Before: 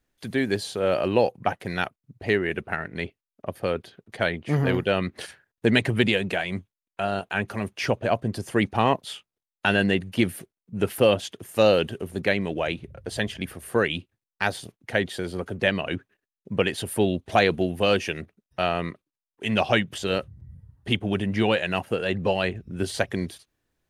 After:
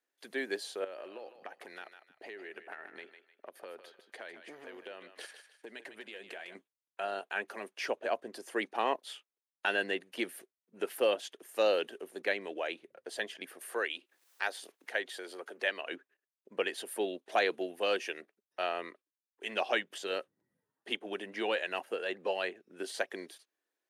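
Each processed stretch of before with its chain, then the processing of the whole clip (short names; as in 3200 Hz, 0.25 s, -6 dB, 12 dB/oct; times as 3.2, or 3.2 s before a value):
0.84–6.55 compressor 12:1, threshold -31 dBFS + thinning echo 0.153 s, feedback 34%, high-pass 540 Hz, level -9 dB
13.61–15.89 HPF 200 Hz + low shelf 470 Hz -6.5 dB + upward compressor, threshold -30 dBFS
whole clip: HPF 330 Hz 24 dB/oct; bell 1700 Hz +3 dB 0.32 oct; gain -9 dB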